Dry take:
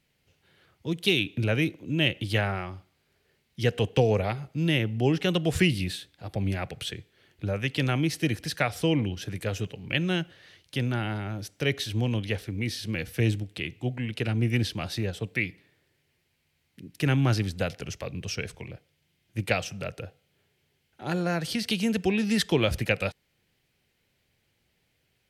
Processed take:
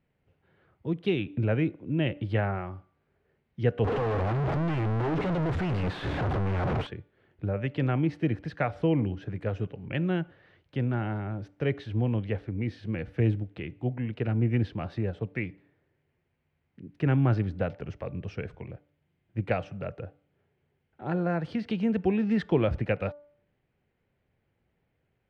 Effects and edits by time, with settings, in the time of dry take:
3.84–6.87 s: one-bit comparator
whole clip: low-pass 1.4 kHz 12 dB/octave; de-hum 292 Hz, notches 5

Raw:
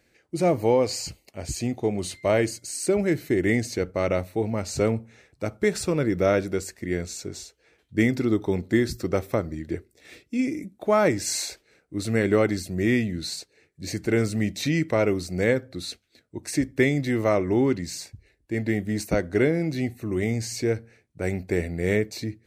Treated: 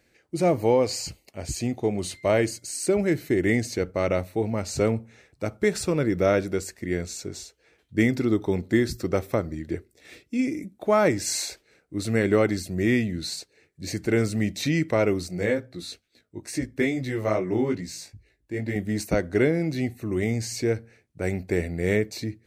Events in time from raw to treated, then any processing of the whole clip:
15.28–18.76 s: chorus 2.3 Hz, delay 16 ms, depth 4.1 ms

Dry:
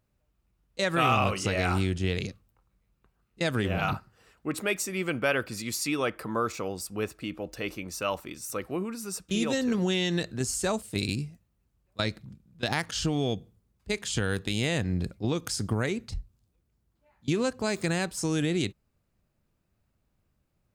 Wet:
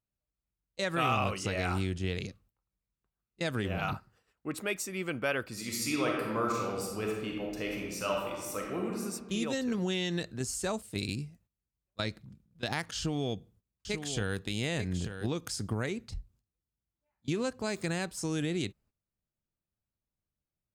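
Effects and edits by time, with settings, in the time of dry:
5.51–9.02 s: reverb throw, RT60 1.4 s, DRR -1.5 dB
12.96–15.29 s: delay 889 ms -8.5 dB
whole clip: gate -57 dBFS, range -13 dB; trim -5 dB

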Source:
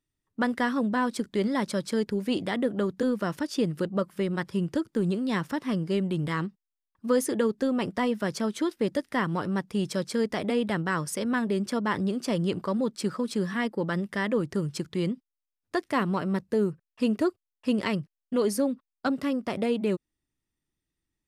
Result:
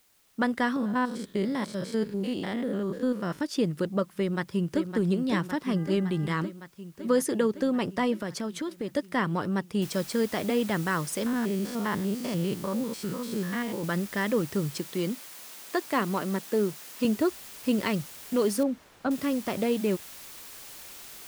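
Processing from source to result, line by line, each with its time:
0.76–3.41 s: spectrogram pixelated in time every 100 ms
4.15–4.85 s: echo throw 560 ms, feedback 75%, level -7.5 dB
5.75–6.32 s: mains buzz 400 Hz, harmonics 5, -51 dBFS -1 dB/octave
8.16–8.90 s: compression 4:1, threshold -29 dBFS
9.82 s: noise floor step -65 dB -45 dB
11.26–13.84 s: spectrogram pixelated in time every 100 ms
14.78–17.05 s: high-pass 190 Hz
18.63–19.11 s: low-pass 1.1 kHz 6 dB/octave

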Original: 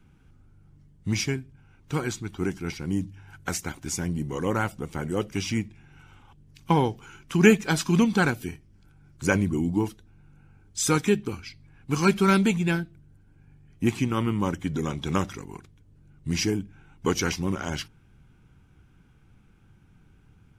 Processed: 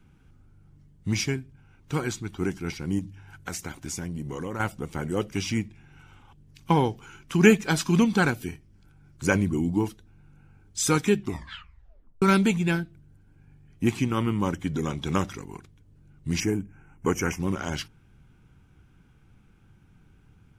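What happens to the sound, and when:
2.99–4.60 s: compression 5:1, threshold -29 dBFS
11.17 s: tape stop 1.05 s
16.40–17.40 s: Butterworth band-stop 4 kHz, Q 1.1

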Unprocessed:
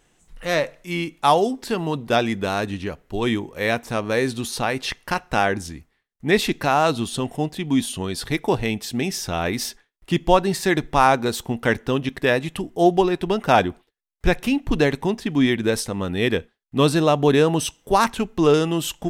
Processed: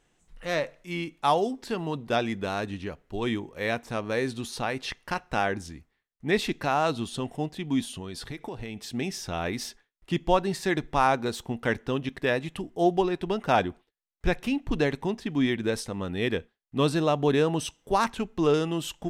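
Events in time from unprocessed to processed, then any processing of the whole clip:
7.83–8.94 s: compression 10:1, threshold -25 dBFS
whole clip: treble shelf 11 kHz -10 dB; trim -6.5 dB

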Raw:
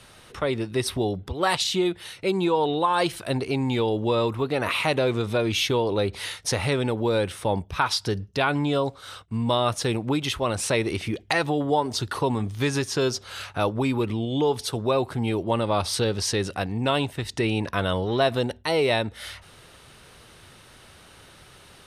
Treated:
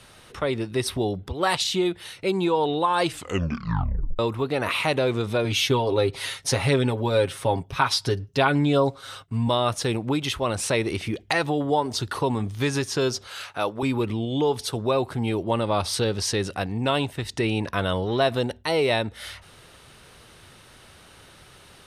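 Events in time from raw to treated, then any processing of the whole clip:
3.03 s: tape stop 1.16 s
5.44–9.48 s: comb 7.4 ms
13.27–13.83 s: high-pass 410 Hz 6 dB/octave

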